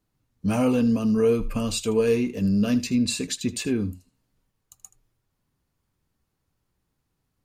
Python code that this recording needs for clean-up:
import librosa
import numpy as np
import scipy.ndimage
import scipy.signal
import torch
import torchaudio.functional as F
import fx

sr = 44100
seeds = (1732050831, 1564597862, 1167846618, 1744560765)

y = fx.fix_echo_inverse(x, sr, delay_ms=78, level_db=-17.0)